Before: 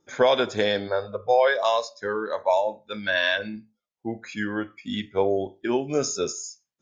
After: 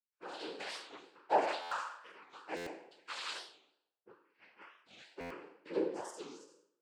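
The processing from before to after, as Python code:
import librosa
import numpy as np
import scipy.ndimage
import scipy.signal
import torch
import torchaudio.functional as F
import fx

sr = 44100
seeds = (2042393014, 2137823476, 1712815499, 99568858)

y = fx.fade_in_head(x, sr, length_s=0.61)
y = fx.power_curve(y, sr, exponent=2.0)
y = fx.ladder_lowpass(y, sr, hz=2300.0, resonance_pct=60, at=(4.18, 4.59), fade=0.02)
y = fx.stiff_resonator(y, sr, f0_hz=370.0, decay_s=0.76, stiffness=0.002)
y = fx.noise_vocoder(y, sr, seeds[0], bands=8)
y = fx.buffer_glitch(y, sr, at_s=(1.61, 2.56, 5.2), block=512, repeats=8)
y = fx.record_warp(y, sr, rpm=45.0, depth_cents=250.0)
y = y * librosa.db_to_amplitude(11.0)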